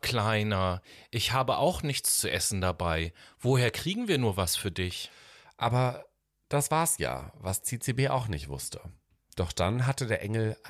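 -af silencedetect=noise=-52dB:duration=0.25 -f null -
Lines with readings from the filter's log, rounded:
silence_start: 6.06
silence_end: 6.51 | silence_duration: 0.45
silence_start: 8.95
silence_end: 9.33 | silence_duration: 0.37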